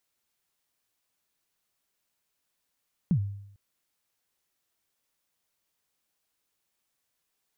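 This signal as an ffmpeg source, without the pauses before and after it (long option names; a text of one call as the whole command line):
ffmpeg -f lavfi -i "aevalsrc='0.126*pow(10,-3*t/0.75)*sin(2*PI*(200*0.08/log(100/200)*(exp(log(100/200)*min(t,0.08)/0.08)-1)+100*max(t-0.08,0)))':duration=0.45:sample_rate=44100" out.wav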